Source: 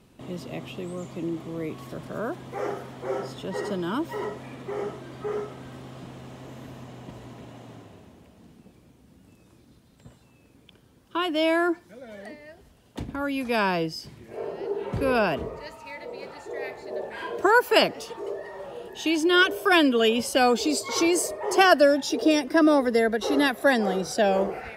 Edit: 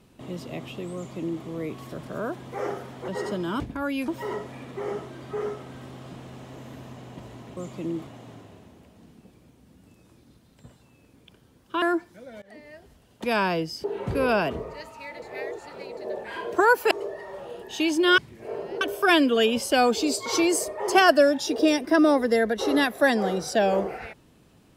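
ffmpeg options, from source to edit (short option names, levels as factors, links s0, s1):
-filter_complex "[0:a]asplit=15[s0][s1][s2][s3][s4][s5][s6][s7][s8][s9][s10][s11][s12][s13][s14];[s0]atrim=end=3.082[s15];[s1]atrim=start=3.468:end=3.992[s16];[s2]atrim=start=12.988:end=13.472[s17];[s3]atrim=start=3.988:end=7.482[s18];[s4]atrim=start=0.948:end=1.452[s19];[s5]atrim=start=7.478:end=11.232[s20];[s6]atrim=start=11.568:end=12.17,asetpts=PTS-STARTPTS,afade=t=out:st=0.598:d=0.004:c=hsin:silence=0.0668344[s21];[s7]atrim=start=12.17:end=12.992,asetpts=PTS-STARTPTS,afade=t=in:d=0.25:silence=0.0668344[s22];[s8]atrim=start=13.468:end=14.072[s23];[s9]atrim=start=14.698:end=16.082[s24];[s10]atrim=start=16.078:end=16.832,asetpts=PTS-STARTPTS,areverse[s25];[s11]atrim=start=16.828:end=17.772[s26];[s12]atrim=start=18.168:end=19.442[s27];[s13]atrim=start=14.068:end=14.702[s28];[s14]atrim=start=19.438[s29];[s15][s16]acrossfade=d=0.004:c1=hsin:c2=hsin[s30];[s30][s17]acrossfade=d=0.004:c1=hsin:c2=hsin[s31];[s31][s18]acrossfade=d=0.004:c1=hsin:c2=hsin[s32];[s32][s19]acrossfade=d=0.004:c1=hsin:c2=hsin[s33];[s33][s20]acrossfade=d=0.004:c1=hsin:c2=hsin[s34];[s21][s22]concat=n=2:v=0:a=1[s35];[s34][s35]acrossfade=d=0.004:c1=hsin:c2=hsin[s36];[s36][s23]acrossfade=d=0.004:c1=hsin:c2=hsin[s37];[s37][s24]acrossfade=d=0.004:c1=hsin:c2=hsin[s38];[s38][s25]acrossfade=d=0.004:c1=hsin:c2=hsin[s39];[s39][s26]acrossfade=d=0.004:c1=hsin:c2=hsin[s40];[s40][s27]acrossfade=d=0.004:c1=hsin:c2=hsin[s41];[s41][s28]acrossfade=d=0.004:c1=hsin:c2=hsin[s42];[s42][s29]acrossfade=d=0.004:c1=hsin:c2=hsin"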